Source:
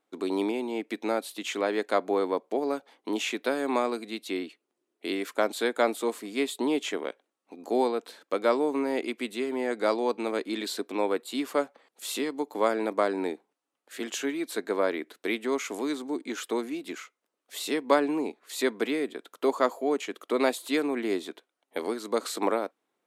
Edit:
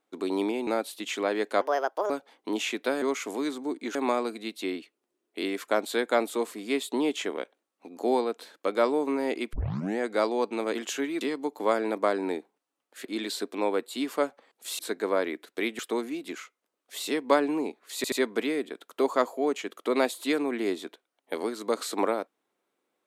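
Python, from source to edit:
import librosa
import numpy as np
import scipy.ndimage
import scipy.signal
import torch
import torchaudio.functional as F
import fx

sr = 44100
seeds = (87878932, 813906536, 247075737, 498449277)

y = fx.edit(x, sr, fx.cut(start_s=0.67, length_s=0.38),
    fx.speed_span(start_s=1.99, length_s=0.71, speed=1.45),
    fx.tape_start(start_s=9.2, length_s=0.46),
    fx.swap(start_s=10.42, length_s=1.74, other_s=14.0, other_length_s=0.46),
    fx.move(start_s=15.46, length_s=0.93, to_s=3.62),
    fx.stutter(start_s=18.56, slice_s=0.08, count=3), tone=tone)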